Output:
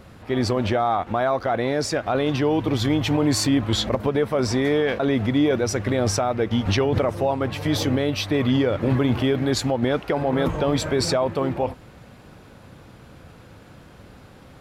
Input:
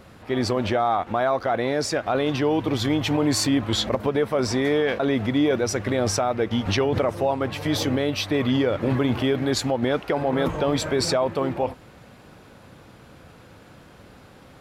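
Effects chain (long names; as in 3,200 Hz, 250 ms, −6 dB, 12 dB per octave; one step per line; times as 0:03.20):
low-shelf EQ 160 Hz +5.5 dB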